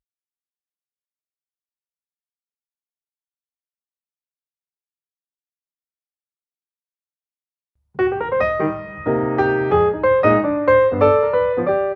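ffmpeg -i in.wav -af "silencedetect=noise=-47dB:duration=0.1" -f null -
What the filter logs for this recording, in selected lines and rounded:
silence_start: 0.00
silence_end: 7.95 | silence_duration: 7.95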